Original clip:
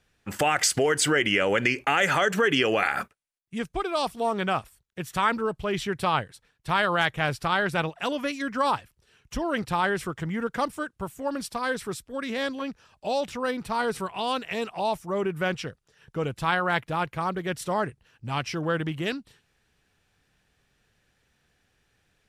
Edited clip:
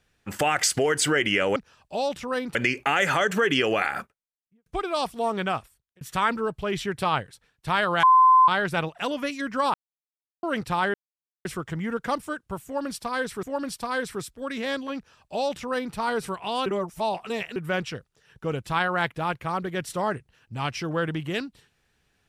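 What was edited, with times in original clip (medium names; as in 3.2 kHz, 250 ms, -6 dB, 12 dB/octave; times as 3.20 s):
2.74–3.67 s: studio fade out
4.32–5.02 s: fade out equal-power
7.04–7.49 s: bleep 1.03 kHz -12 dBFS
8.75–9.44 s: mute
9.95 s: insert silence 0.51 s
11.15–11.93 s: loop, 2 plays
12.68–13.67 s: copy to 1.56 s
14.38–15.28 s: reverse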